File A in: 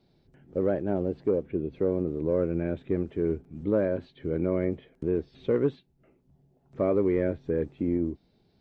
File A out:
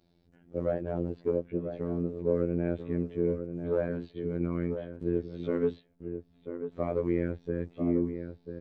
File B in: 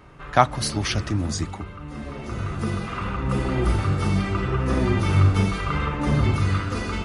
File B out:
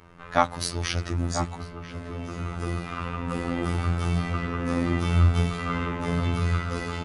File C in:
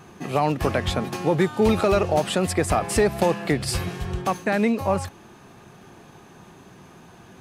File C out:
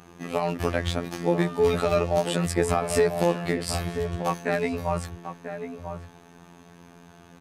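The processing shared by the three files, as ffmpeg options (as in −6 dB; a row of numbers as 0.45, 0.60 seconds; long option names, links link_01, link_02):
-filter_complex "[0:a]afftfilt=real='hypot(re,im)*cos(PI*b)':imag='0':win_size=2048:overlap=0.75,asplit=2[link_01][link_02];[link_02]adelay=991.3,volume=-8dB,highshelf=frequency=4000:gain=-22.3[link_03];[link_01][link_03]amix=inputs=2:normalize=0"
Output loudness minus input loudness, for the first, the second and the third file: −3.5, −4.0, −3.0 LU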